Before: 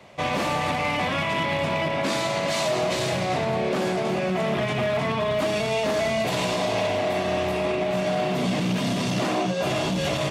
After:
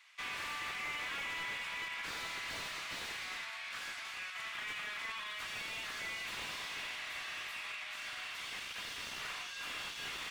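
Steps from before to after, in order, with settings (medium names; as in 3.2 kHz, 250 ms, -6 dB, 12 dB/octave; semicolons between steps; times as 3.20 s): inverse Chebyshev high-pass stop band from 400 Hz, stop band 60 dB; slew-rate limiter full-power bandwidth 63 Hz; trim -7 dB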